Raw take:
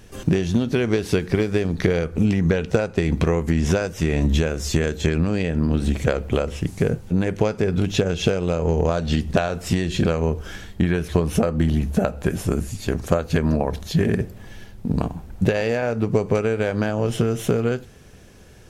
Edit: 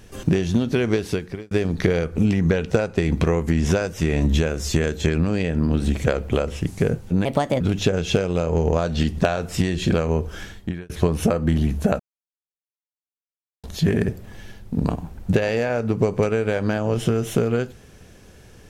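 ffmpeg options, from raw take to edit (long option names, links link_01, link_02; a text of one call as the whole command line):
ffmpeg -i in.wav -filter_complex "[0:a]asplit=7[link_01][link_02][link_03][link_04][link_05][link_06][link_07];[link_01]atrim=end=1.51,asetpts=PTS-STARTPTS,afade=type=out:start_time=0.93:duration=0.58[link_08];[link_02]atrim=start=1.51:end=7.254,asetpts=PTS-STARTPTS,afade=type=in:duration=0.004:curve=hsin[link_09];[link_03]atrim=start=7.25:end=7.73,asetpts=PTS-STARTPTS,asetrate=59535,aresample=44100[link_10];[link_04]atrim=start=7.726:end=11.02,asetpts=PTS-STARTPTS,afade=type=out:start_time=2.834:duration=0.46[link_11];[link_05]atrim=start=11.02:end=12.12,asetpts=PTS-STARTPTS,afade=type=in:duration=0.004:curve=hsin,afade=type=out:start_time=1.096:duration=0.004:curve=hsin[link_12];[link_06]atrim=start=12.12:end=13.76,asetpts=PTS-STARTPTS,volume=0[link_13];[link_07]atrim=start=13.76,asetpts=PTS-STARTPTS,afade=type=in:duration=0.004:curve=hsin[link_14];[link_08][link_09]concat=n=2:v=0:a=1[link_15];[link_15][link_10]acrossfade=duration=0.004:curve1=hsin:curve2=hsin[link_16];[link_11][link_12][link_13][link_14]concat=n=4:v=0:a=1[link_17];[link_16][link_17]acrossfade=duration=0.004:curve1=hsin:curve2=hsin" out.wav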